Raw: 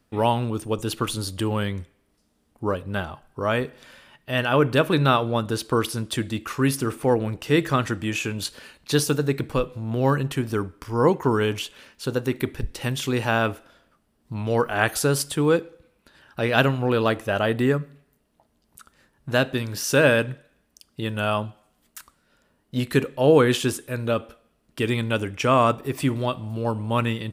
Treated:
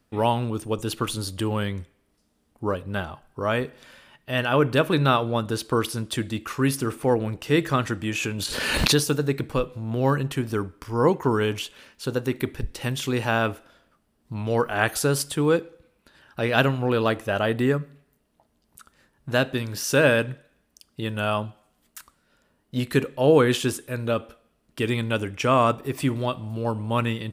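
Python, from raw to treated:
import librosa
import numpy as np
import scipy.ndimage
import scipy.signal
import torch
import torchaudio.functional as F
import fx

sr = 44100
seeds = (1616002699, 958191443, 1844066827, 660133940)

y = fx.pre_swell(x, sr, db_per_s=31.0, at=(8.19, 9.05))
y = y * 10.0 ** (-1.0 / 20.0)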